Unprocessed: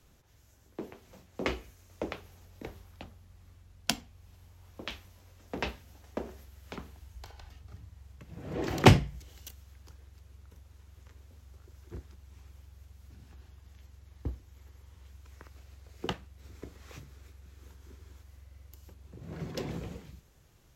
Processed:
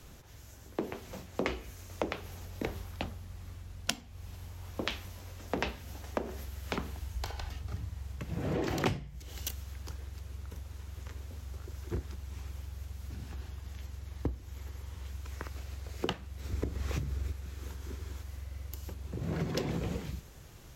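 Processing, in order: 16.52–17.33 low shelf 360 Hz +9.5 dB; compressor 8:1, threshold -40 dBFS, peak gain reduction 26.5 dB; gain +10.5 dB

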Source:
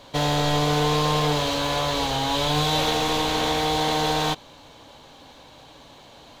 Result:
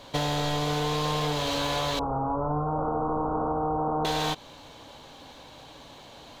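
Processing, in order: 1.99–4.05 Chebyshev low-pass 1400 Hz, order 8; compressor, threshold -24 dBFS, peak gain reduction 6.5 dB

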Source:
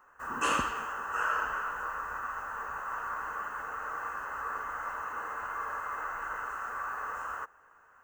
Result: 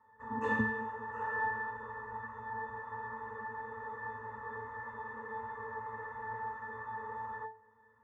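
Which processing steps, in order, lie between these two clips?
octave resonator A, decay 0.33 s; gain +17 dB

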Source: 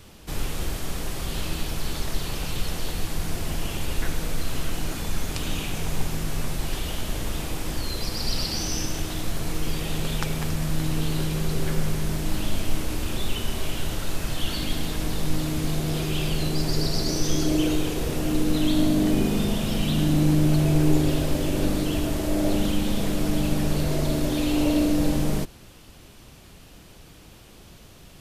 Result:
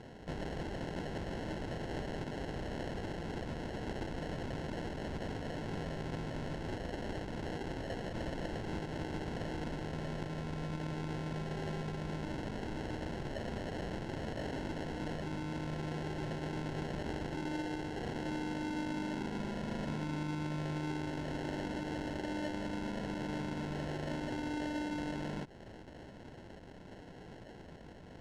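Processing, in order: HPF 180 Hz 6 dB/oct; compressor, threshold -36 dBFS, peak gain reduction 16 dB; sample-rate reducer 1200 Hz, jitter 0%; air absorption 87 m

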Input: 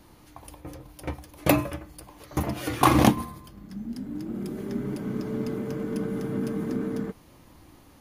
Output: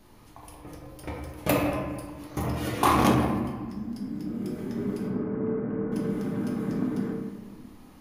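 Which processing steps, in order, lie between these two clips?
5.07–5.92 LPF 1800 Hz 24 dB/oct; reverb RT60 1.5 s, pre-delay 5 ms, DRR -2 dB; core saturation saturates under 610 Hz; gain -4 dB

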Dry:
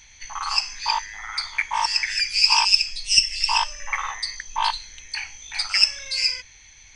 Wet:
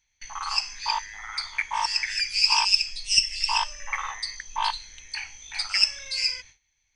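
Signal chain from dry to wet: gate with hold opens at -35 dBFS; gain -3.5 dB

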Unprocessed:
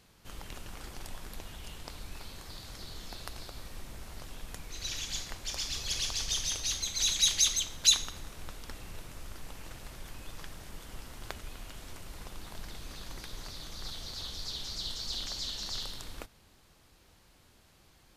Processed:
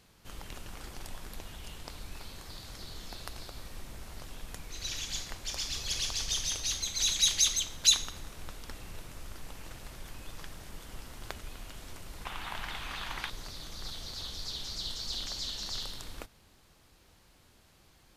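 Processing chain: 12.25–13.3 band shelf 1600 Hz +12.5 dB 2.5 oct

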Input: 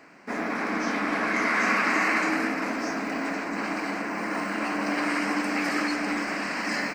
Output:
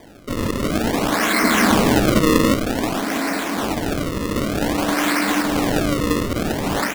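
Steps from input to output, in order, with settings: 1.43–2.56 RIAA curve playback; decimation with a swept rate 32×, swing 160% 0.53 Hz; gain +7.5 dB

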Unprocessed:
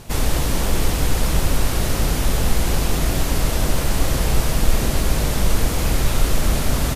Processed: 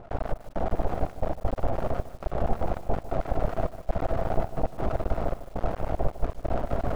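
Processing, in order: reverse; upward compressor, threshold -18 dBFS; reverse; synth low-pass 690 Hz, resonance Q 4.9; diffused feedback echo 0.555 s, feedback 46%, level -12 dB; half-wave rectifier; step gate "xxx..xxxxx.x.xx" 135 bpm -24 dB; lo-fi delay 0.151 s, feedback 35%, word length 6-bit, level -14 dB; gain -6.5 dB

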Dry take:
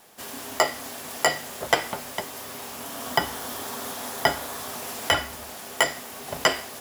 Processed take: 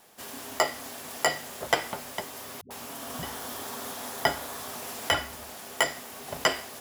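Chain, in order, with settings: 2.61–3.23 dispersion highs, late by 96 ms, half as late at 320 Hz; gain -3.5 dB

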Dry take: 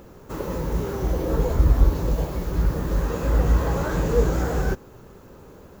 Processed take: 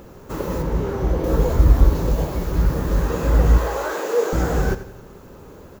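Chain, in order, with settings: 0.62–1.24 high shelf 4600 Hz -11 dB; 3.58–4.33 HPF 380 Hz 24 dB/oct; feedback echo 89 ms, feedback 45%, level -13.5 dB; gain +3.5 dB

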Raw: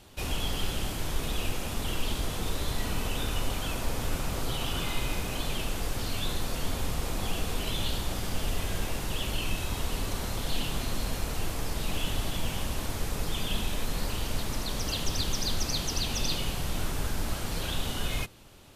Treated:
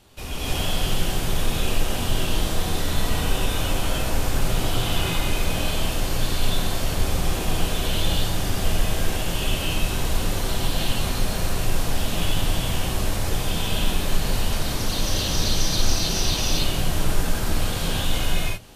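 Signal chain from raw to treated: non-linear reverb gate 0.34 s rising, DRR -8 dB; gain -1.5 dB

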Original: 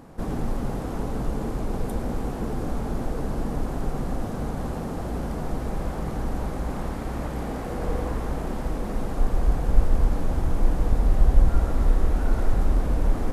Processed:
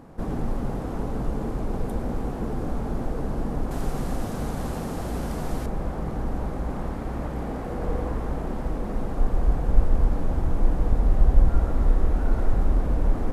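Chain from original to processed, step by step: high shelf 2500 Hz -6 dB, from 3.71 s +5.5 dB, from 5.66 s -8 dB

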